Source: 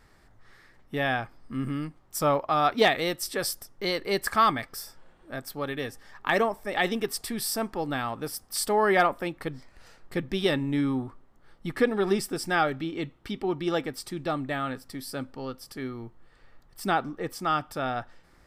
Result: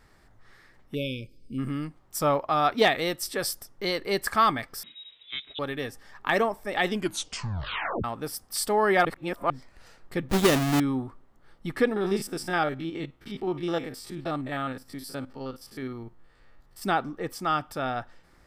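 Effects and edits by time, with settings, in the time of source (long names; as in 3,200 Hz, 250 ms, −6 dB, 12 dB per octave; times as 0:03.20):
0:00.95–0:01.58: time-frequency box erased 560–2,200 Hz
0:04.83–0:05.59: voice inversion scrambler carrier 3,800 Hz
0:06.88: tape stop 1.16 s
0:09.05–0:09.50: reverse
0:10.29–0:10.80: each half-wave held at its own peak
0:11.96–0:16.82: spectrum averaged block by block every 50 ms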